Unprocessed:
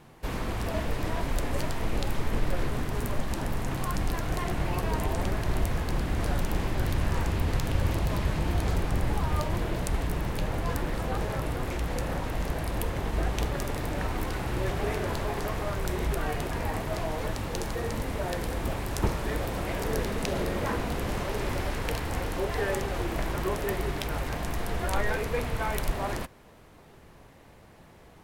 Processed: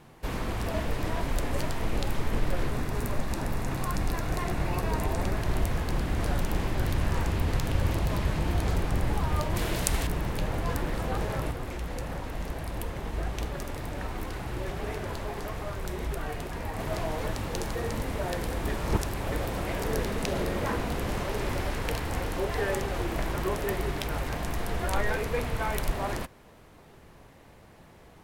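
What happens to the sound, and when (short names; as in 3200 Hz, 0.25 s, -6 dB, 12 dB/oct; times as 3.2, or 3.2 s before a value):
2.72–5.36 notch 3100 Hz
9.56–10.07 high shelf 2300 Hz +11 dB
11.51–16.79 flange 1.7 Hz, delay 0.8 ms, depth 4.8 ms, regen -66%
18.68–19.32 reverse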